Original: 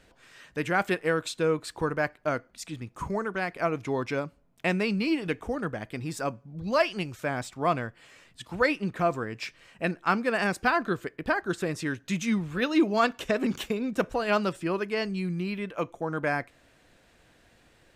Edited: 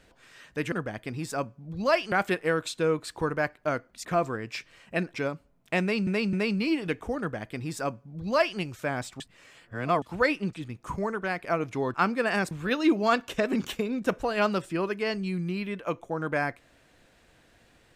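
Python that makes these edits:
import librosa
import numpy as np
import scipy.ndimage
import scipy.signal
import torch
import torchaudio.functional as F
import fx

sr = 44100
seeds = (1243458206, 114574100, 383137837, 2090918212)

y = fx.edit(x, sr, fx.swap(start_s=2.65, length_s=1.41, other_s=8.93, other_length_s=1.09),
    fx.repeat(start_s=4.73, length_s=0.26, count=3),
    fx.duplicate(start_s=5.59, length_s=1.4, to_s=0.72),
    fx.reverse_span(start_s=7.6, length_s=0.82),
    fx.cut(start_s=10.59, length_s=1.83), tone=tone)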